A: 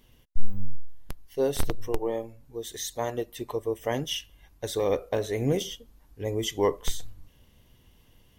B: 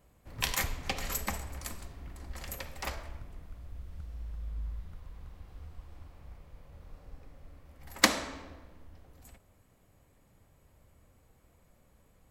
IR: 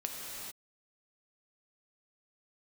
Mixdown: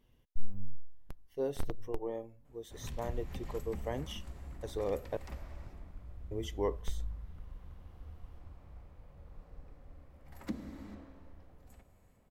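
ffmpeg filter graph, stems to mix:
-filter_complex "[0:a]volume=-8.5dB,asplit=3[link_01][link_02][link_03];[link_01]atrim=end=5.17,asetpts=PTS-STARTPTS,afade=type=out:start_time=5.166:duration=0.004:curve=hsin[link_04];[link_02]atrim=start=5.17:end=6.31,asetpts=PTS-STARTPTS,volume=0[link_05];[link_03]atrim=start=6.31,asetpts=PTS-STARTPTS,afade=type=in:duration=0.004:curve=hsin[link_06];[link_04][link_05][link_06]concat=n=3:v=0:a=1[link_07];[1:a]acrossover=split=310[link_08][link_09];[link_09]acompressor=threshold=-46dB:ratio=8[link_10];[link_08][link_10]amix=inputs=2:normalize=0,adelay=2450,volume=-6dB,asplit=2[link_11][link_12];[link_12]volume=-4dB[link_13];[2:a]atrim=start_sample=2205[link_14];[link_13][link_14]afir=irnorm=-1:irlink=0[link_15];[link_07][link_11][link_15]amix=inputs=3:normalize=0,highshelf=frequency=2200:gain=-9"

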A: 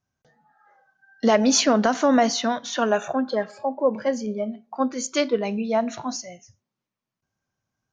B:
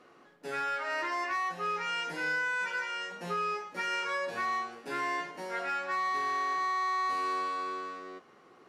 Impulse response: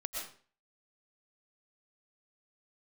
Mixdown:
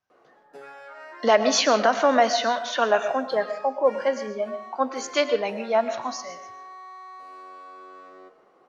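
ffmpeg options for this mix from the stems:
-filter_complex "[0:a]acrossover=split=410 5200:gain=0.2 1 0.178[link_01][link_02][link_03];[link_01][link_02][link_03]amix=inputs=3:normalize=0,volume=0dB,asplit=2[link_04][link_05];[link_05]volume=-7.5dB[link_06];[1:a]equalizer=frequency=650:width=0.75:gain=11.5,bandreject=frequency=77.63:width_type=h:width=4,bandreject=frequency=155.26:width_type=h:width=4,bandreject=frequency=232.89:width_type=h:width=4,bandreject=frequency=310.52:width_type=h:width=4,bandreject=frequency=388.15:width_type=h:width=4,bandreject=frequency=465.78:width_type=h:width=4,bandreject=frequency=543.41:width_type=h:width=4,bandreject=frequency=621.04:width_type=h:width=4,bandreject=frequency=698.67:width_type=h:width=4,bandreject=frequency=776.3:width_type=h:width=4,bandreject=frequency=853.93:width_type=h:width=4,bandreject=frequency=931.56:width_type=h:width=4,bandreject=frequency=1009.19:width_type=h:width=4,bandreject=frequency=1086.82:width_type=h:width=4,bandreject=frequency=1164.45:width_type=h:width=4,bandreject=frequency=1242.08:width_type=h:width=4,bandreject=frequency=1319.71:width_type=h:width=4,bandreject=frequency=1397.34:width_type=h:width=4,bandreject=frequency=1474.97:width_type=h:width=4,bandreject=frequency=1552.6:width_type=h:width=4,bandreject=frequency=1630.23:width_type=h:width=4,bandreject=frequency=1707.86:width_type=h:width=4,bandreject=frequency=1785.49:width_type=h:width=4,bandreject=frequency=1863.12:width_type=h:width=4,bandreject=frequency=1940.75:width_type=h:width=4,bandreject=frequency=2018.38:width_type=h:width=4,bandreject=frequency=2096.01:width_type=h:width=4,bandreject=frequency=2173.64:width_type=h:width=4,bandreject=frequency=2251.27:width_type=h:width=4,bandreject=frequency=2328.9:width_type=h:width=4,bandreject=frequency=2406.53:width_type=h:width=4,bandreject=frequency=2484.16:width_type=h:width=4,bandreject=frequency=2561.79:width_type=h:width=4,bandreject=frequency=2639.42:width_type=h:width=4,bandreject=frequency=2717.05:width_type=h:width=4,bandreject=frequency=2794.68:width_type=h:width=4,bandreject=frequency=2872.31:width_type=h:width=4,bandreject=frequency=2949.94:width_type=h:width=4,acompressor=threshold=-33dB:ratio=5,adelay=100,volume=-9dB,asplit=2[link_07][link_08];[link_08]volume=-13dB[link_09];[2:a]atrim=start_sample=2205[link_10];[link_06][link_09]amix=inputs=2:normalize=0[link_11];[link_11][link_10]afir=irnorm=-1:irlink=0[link_12];[link_04][link_07][link_12]amix=inputs=3:normalize=0"

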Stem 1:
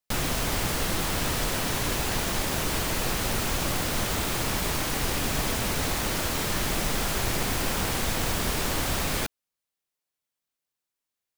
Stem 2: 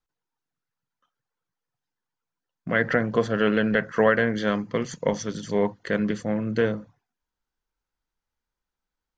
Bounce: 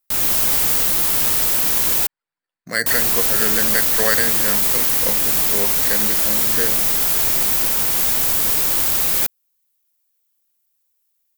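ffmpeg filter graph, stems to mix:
ffmpeg -i stem1.wav -i stem2.wav -filter_complex "[0:a]aemphasis=mode=production:type=50fm,dynaudnorm=framelen=110:gausssize=3:maxgain=5dB,volume=-2dB,asplit=3[link_01][link_02][link_03];[link_01]atrim=end=2.07,asetpts=PTS-STARTPTS,afade=type=out:start_time=2.066:duration=0.004:curve=hsin[link_04];[link_02]atrim=start=2.07:end=2.86,asetpts=PTS-STARTPTS,volume=0[link_05];[link_03]atrim=start=2.86,asetpts=PTS-STARTPTS,afade=type=in:duration=0.004:curve=hsin[link_06];[link_04][link_05][link_06]concat=n=3:v=0:a=1[link_07];[1:a]equalizer=frequency=1900:width_type=o:width=0.66:gain=9,acrusher=samples=7:mix=1:aa=0.000001,volume=-3dB[link_08];[link_07][link_08]amix=inputs=2:normalize=0,lowshelf=frequency=220:gain=-7" out.wav

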